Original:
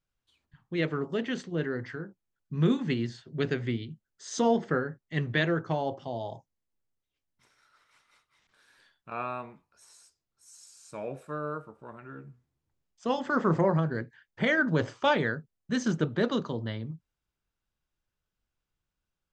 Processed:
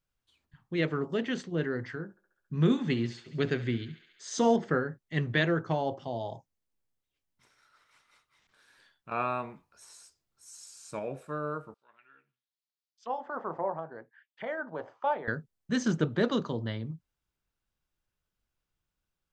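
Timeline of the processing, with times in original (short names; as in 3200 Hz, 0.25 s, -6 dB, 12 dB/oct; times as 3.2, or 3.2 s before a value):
2.03–4.56 thinning echo 69 ms, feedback 79%, high-pass 480 Hz, level -16 dB
9.11–10.99 gain +3.5 dB
11.74–15.28 auto-wah 780–4500 Hz, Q 2.6, down, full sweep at -30 dBFS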